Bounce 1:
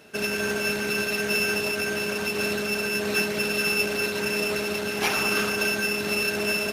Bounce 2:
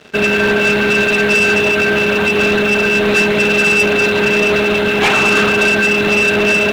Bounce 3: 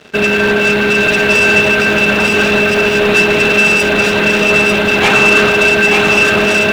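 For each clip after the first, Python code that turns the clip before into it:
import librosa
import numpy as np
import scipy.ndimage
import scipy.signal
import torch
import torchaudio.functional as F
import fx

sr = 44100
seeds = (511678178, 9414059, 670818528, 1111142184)

y1 = scipy.signal.sosfilt(scipy.signal.butter(16, 4000.0, 'lowpass', fs=sr, output='sos'), x)
y1 = fx.leveller(y1, sr, passes=3)
y1 = F.gain(torch.from_numpy(y1), 5.0).numpy()
y2 = y1 + 10.0 ** (-3.5 / 20.0) * np.pad(y1, (int(895 * sr / 1000.0), 0))[:len(y1)]
y2 = F.gain(torch.from_numpy(y2), 1.5).numpy()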